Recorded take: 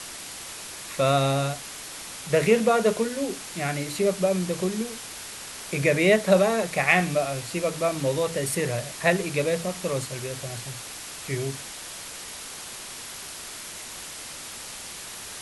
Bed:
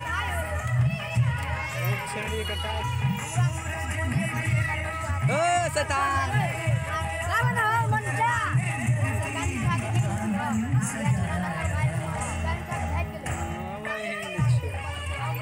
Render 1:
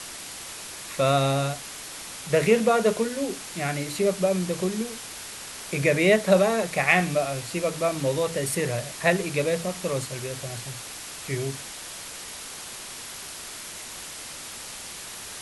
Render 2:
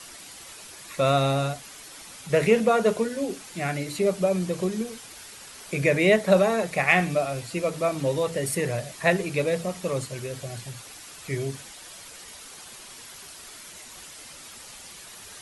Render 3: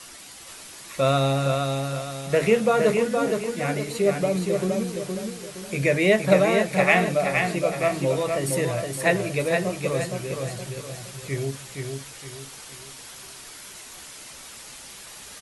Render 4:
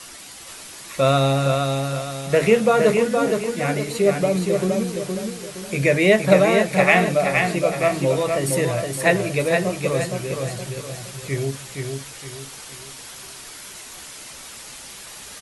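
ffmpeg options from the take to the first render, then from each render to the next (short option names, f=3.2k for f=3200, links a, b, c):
-af anull
-af "afftdn=nr=8:nf=-39"
-filter_complex "[0:a]asplit=2[a][b];[b]adelay=15,volume=-12dB[c];[a][c]amix=inputs=2:normalize=0,aecho=1:1:467|934|1401|1868|2335:0.596|0.226|0.086|0.0327|0.0124"
-af "volume=3.5dB,alimiter=limit=-2dB:level=0:latency=1"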